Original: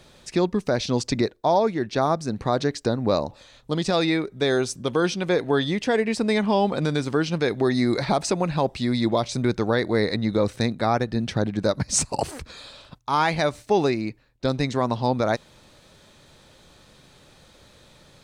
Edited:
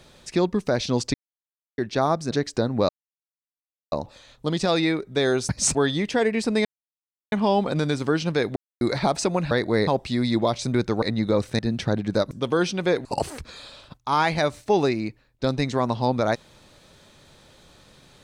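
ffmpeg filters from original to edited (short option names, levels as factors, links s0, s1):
-filter_complex "[0:a]asplit=16[s0][s1][s2][s3][s4][s5][s6][s7][s8][s9][s10][s11][s12][s13][s14][s15];[s0]atrim=end=1.14,asetpts=PTS-STARTPTS,afade=t=out:st=1.136:d=0.004:c=hsin[s16];[s1]atrim=start=1.14:end=1.78,asetpts=PTS-STARTPTS,volume=0[s17];[s2]atrim=start=1.78:end=2.312,asetpts=PTS-STARTPTS,afade=t=in:d=0.004:c=hsin[s18];[s3]atrim=start=2.588:end=3.17,asetpts=PTS-STARTPTS,afade=t=out:st=0.578:d=0.004:c=hsin,apad=pad_dur=1.03[s19];[s4]atrim=start=3.17:end=4.742,asetpts=PTS-STARTPTS,afade=t=in:d=0.004:c=hsin[s20];[s5]atrim=start=11.798:end=12.062[s21];[s6]atrim=start=5.478:end=6.38,asetpts=PTS-STARTPTS,afade=t=out:st=0.898:d=0.004:c=hsin,apad=pad_dur=0.67[s22];[s7]atrim=start=6.38:end=7.62,asetpts=PTS-STARTPTS,afade=t=in:d=0.004:c=hsin,afade=t=out:st=1.236:d=0.004:c=hsin[s23];[s8]atrim=start=7.62:end=7.87,asetpts=PTS-STARTPTS,volume=0[s24];[s9]atrim=start=7.87:end=8.572,asetpts=PTS-STARTPTS,afade=t=in:d=0.004:c=hsin[s25];[s10]atrim=start=9.718:end=10.082[s26];[s11]atrim=start=8.568:end=9.722[s27];[s12]atrim=start=10.078:end=10.652[s28];[s13]atrim=start=11.078:end=11.802[s29];[s14]atrim=start=4.738:end=5.482[s30];[s15]atrim=start=12.058[s31];[s16][s17][s18]concat=n=3:v=0:a=1[s32];[s19][s20]concat=n=2:v=0:a=1[s33];[s32][s33]acrossfade=d=0.004:c1=hsin:c2=hsin[s34];[s34][s21]acrossfade=d=0.004:c1=hsin:c2=hsin[s35];[s22][s23][s24][s25]concat=n=4:v=0:a=1[s36];[s35][s36]acrossfade=d=0.004:c1=hsin:c2=hsin[s37];[s37][s26]acrossfade=d=0.004:c1=hsin:c2=hsin[s38];[s38][s27]acrossfade=d=0.004:c1=hsin:c2=hsin[s39];[s39][s28]acrossfade=d=0.004:c1=hsin:c2=hsin[s40];[s40][s29]acrossfade=d=0.004:c1=hsin:c2=hsin[s41];[s41][s30]acrossfade=d=0.004:c1=hsin:c2=hsin[s42];[s42][s31]acrossfade=d=0.004:c1=hsin:c2=hsin"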